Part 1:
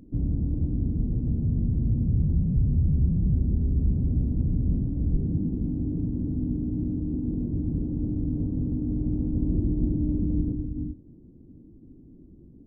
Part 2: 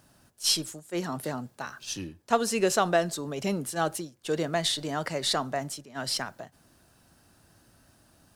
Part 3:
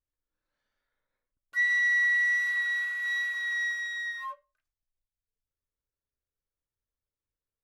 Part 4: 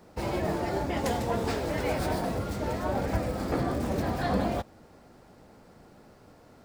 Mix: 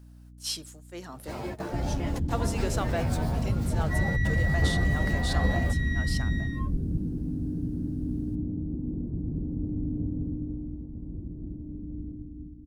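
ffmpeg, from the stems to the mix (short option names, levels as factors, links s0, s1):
-filter_complex "[0:a]adelay=1600,volume=0.596,afade=t=out:st=10.09:d=0.7:silence=0.334965,asplit=2[s0][s1];[s1]volume=0.422[s2];[1:a]lowshelf=f=330:g=-4.5,acrusher=bits=10:mix=0:aa=0.000001,volume=0.398,asplit=2[s3][s4];[2:a]alimiter=level_in=1.06:limit=0.0631:level=0:latency=1,volume=0.944,adelay=2350,volume=0.501[s5];[3:a]asplit=2[s6][s7];[s7]adelay=10.9,afreqshift=-0.31[s8];[s6][s8]amix=inputs=2:normalize=1,adelay=1100,volume=0.75[s9];[s4]apad=whole_len=342021[s10];[s9][s10]sidechaingate=range=0.0631:threshold=0.00141:ratio=16:detection=peak[s11];[s2]aecho=0:1:210|420|630|840|1050:1|0.38|0.144|0.0549|0.0209[s12];[s0][s3][s5][s11][s12]amix=inputs=5:normalize=0,aeval=exprs='val(0)+0.00398*(sin(2*PI*60*n/s)+sin(2*PI*2*60*n/s)/2+sin(2*PI*3*60*n/s)/3+sin(2*PI*4*60*n/s)/4+sin(2*PI*5*60*n/s)/5)':c=same"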